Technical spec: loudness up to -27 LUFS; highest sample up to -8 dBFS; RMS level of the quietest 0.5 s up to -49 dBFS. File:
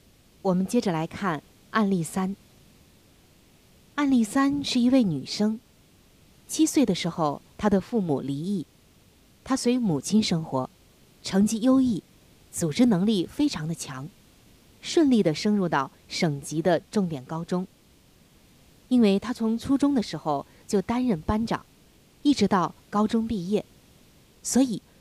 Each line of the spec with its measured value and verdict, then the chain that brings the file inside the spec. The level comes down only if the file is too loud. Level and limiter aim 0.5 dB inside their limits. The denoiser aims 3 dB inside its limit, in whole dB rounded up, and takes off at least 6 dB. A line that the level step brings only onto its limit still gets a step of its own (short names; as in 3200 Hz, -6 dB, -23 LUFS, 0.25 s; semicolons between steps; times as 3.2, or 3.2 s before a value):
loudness -25.5 LUFS: fail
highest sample -9.0 dBFS: OK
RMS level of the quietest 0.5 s -57 dBFS: OK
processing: gain -2 dB